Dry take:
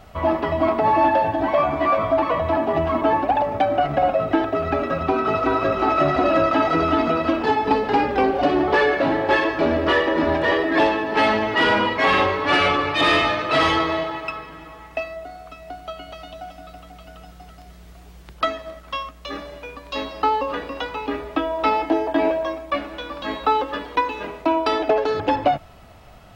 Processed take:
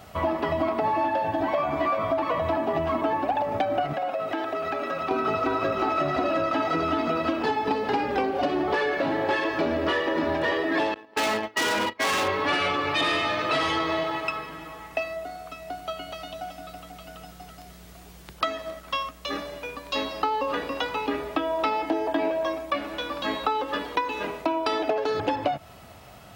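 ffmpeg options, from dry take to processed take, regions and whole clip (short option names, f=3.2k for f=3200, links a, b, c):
-filter_complex "[0:a]asettb=1/sr,asplit=3[a][b][c];[a]atrim=end=3.934[d];[b]atrim=start=3.93:end=5.11,asetpts=PTS-STARTPTS,afade=t=in:d=0.004:c=qsin,afade=t=out:st=1.176:d=0.004:c=qsin,highpass=f=520:p=1,acompressor=threshold=-26dB:ratio=3:attack=3.2:release=140:knee=1:detection=peak[e];[c]atrim=start=5.106[f];[d][e]acrossfade=d=0.004:c1=hsin:c2=qsin[g];[g][f]acrossfade=d=0.004:c1=qsin:c2=hsin,asettb=1/sr,asplit=3[h][i][j];[h]atrim=end=10.944[k];[i]atrim=start=10.94:end=12.28,asetpts=PTS-STARTPTS,afade=t=in:d=0.004:c=qsin,afade=t=out:st=1.336:d=0.004:c=qsin,agate=range=-29dB:threshold=-21dB:ratio=16:release=100:detection=peak,asoftclip=type=hard:threshold=-20.5dB,equalizer=f=130:t=o:w=0.6:g=-5.5[l];[j]atrim=start=12.276[m];[k][l]acrossfade=d=0.004:c1=hsin:c2=qsin[n];[n][m]acrossfade=d=0.004:c1=qsin:c2=hsin,highpass=81,highshelf=f=5.6k:g=7.5,acompressor=threshold=-22dB:ratio=6"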